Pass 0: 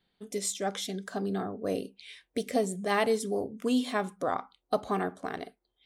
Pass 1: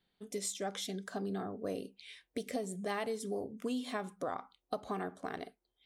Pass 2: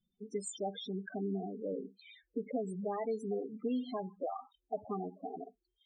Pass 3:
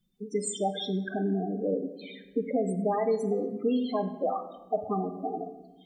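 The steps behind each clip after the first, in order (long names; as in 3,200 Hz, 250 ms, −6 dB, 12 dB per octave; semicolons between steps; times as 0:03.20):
downward compressor, threshold −29 dBFS, peak gain reduction 8 dB; level −4 dB
spectral peaks only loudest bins 8; level +2 dB
rectangular room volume 610 cubic metres, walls mixed, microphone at 0.57 metres; level +8.5 dB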